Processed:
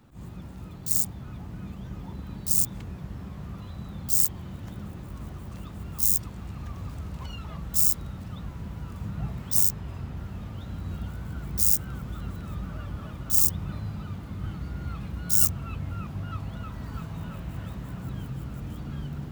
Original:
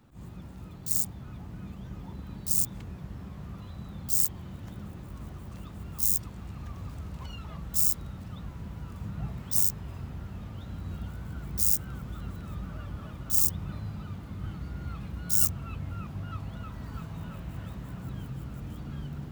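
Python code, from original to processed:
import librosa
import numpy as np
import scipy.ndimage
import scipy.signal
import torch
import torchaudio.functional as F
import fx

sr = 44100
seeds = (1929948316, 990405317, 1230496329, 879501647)

y = fx.high_shelf(x, sr, hz=8600.0, db=-5.0, at=(9.71, 10.17))
y = y * 10.0 ** (3.0 / 20.0)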